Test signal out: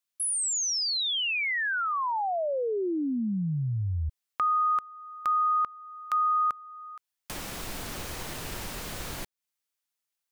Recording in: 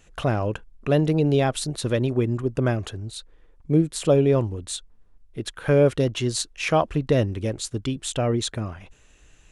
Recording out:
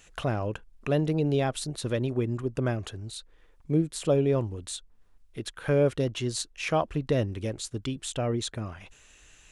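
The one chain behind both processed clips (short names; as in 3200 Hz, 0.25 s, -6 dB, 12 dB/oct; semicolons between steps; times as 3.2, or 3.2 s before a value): mismatched tape noise reduction encoder only; gain -5.5 dB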